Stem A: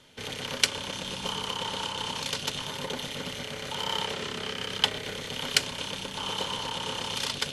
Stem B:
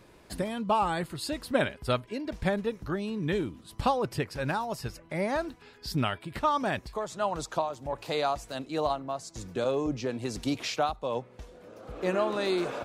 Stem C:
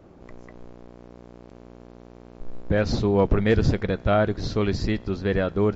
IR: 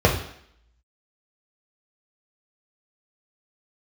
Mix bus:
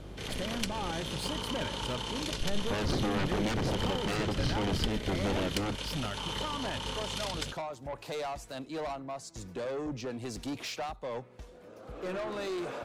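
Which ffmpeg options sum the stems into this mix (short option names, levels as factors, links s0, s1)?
-filter_complex "[0:a]aeval=exprs='0.668*sin(PI/2*1.58*val(0)/0.668)':c=same,aeval=exprs='val(0)+0.0224*(sin(2*PI*50*n/s)+sin(2*PI*2*50*n/s)/2+sin(2*PI*3*50*n/s)/3+sin(2*PI*4*50*n/s)/4+sin(2*PI*5*50*n/s)/5)':c=same,volume=0.266[s0];[1:a]asoftclip=type=tanh:threshold=0.0335,volume=0.794[s1];[2:a]aeval=exprs='0.0708*(abs(mod(val(0)/0.0708+3,4)-2)-1)':c=same,aeval=exprs='(tanh(22.4*val(0)+0.35)-tanh(0.35))/22.4':c=same,volume=1.19[s2];[s0][s1][s2]amix=inputs=3:normalize=0,acrossover=split=440[s3][s4];[s4]acompressor=threshold=0.0224:ratio=4[s5];[s3][s5]amix=inputs=2:normalize=0"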